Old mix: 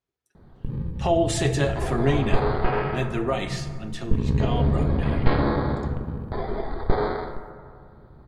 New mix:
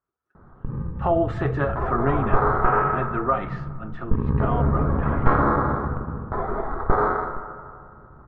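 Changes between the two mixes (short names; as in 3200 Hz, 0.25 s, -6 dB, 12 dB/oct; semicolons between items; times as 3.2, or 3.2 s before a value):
speech: send -9.5 dB; master: add synth low-pass 1300 Hz, resonance Q 4.7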